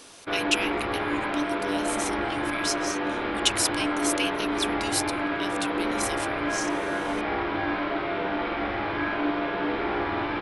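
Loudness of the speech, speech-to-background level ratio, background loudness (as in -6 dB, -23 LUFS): -30.5 LUFS, -2.5 dB, -28.0 LUFS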